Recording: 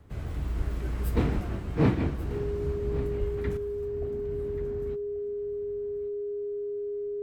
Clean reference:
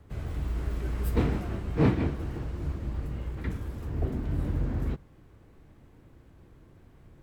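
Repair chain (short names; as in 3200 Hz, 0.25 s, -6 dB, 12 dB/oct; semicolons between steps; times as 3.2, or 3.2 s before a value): notch 410 Hz, Q 30; 0.57–0.69 HPF 140 Hz 24 dB/oct; 1.34–1.46 HPF 140 Hz 24 dB/oct; 3.19–3.31 HPF 140 Hz 24 dB/oct; inverse comb 1.136 s -15.5 dB; 3.57 gain correction +9.5 dB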